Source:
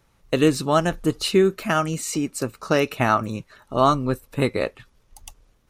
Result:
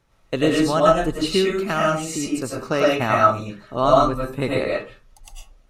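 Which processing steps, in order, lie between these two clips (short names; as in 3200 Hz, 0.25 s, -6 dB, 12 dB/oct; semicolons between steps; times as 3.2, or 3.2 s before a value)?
high shelf 11000 Hz -10 dB; reverb RT60 0.35 s, pre-delay 67 ms, DRR -4 dB; gain -3 dB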